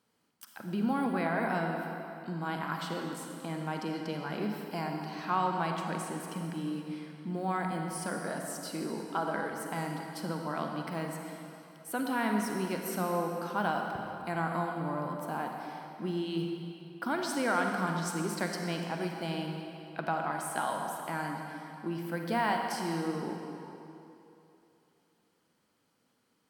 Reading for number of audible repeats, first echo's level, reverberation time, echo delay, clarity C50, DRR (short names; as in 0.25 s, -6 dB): none, none, 3.0 s, none, 2.5 dB, 2.0 dB